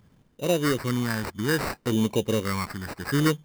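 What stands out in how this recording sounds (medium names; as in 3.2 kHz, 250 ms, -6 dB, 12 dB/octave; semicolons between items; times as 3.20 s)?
phasing stages 4, 0.62 Hz, lowest notch 480–1300 Hz; aliases and images of a low sample rate 3.3 kHz, jitter 0%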